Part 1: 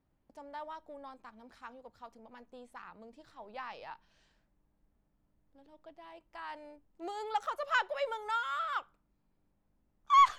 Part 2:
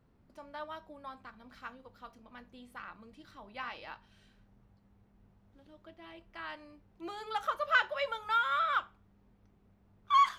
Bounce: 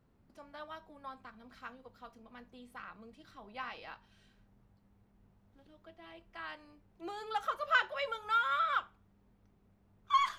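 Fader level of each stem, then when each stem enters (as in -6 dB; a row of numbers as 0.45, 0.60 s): -9.5, -2.0 dB; 0.00, 0.00 s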